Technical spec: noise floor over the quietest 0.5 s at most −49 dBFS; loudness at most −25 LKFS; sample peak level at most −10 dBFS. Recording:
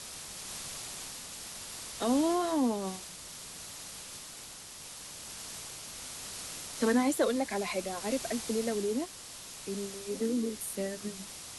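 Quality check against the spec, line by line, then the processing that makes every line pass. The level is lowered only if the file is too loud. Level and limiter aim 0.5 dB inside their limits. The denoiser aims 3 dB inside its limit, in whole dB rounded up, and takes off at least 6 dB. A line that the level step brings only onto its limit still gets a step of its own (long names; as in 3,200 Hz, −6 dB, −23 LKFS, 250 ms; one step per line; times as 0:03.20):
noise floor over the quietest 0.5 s −47 dBFS: out of spec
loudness −34.5 LKFS: in spec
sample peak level −16.0 dBFS: in spec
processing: broadband denoise 6 dB, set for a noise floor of −47 dBFS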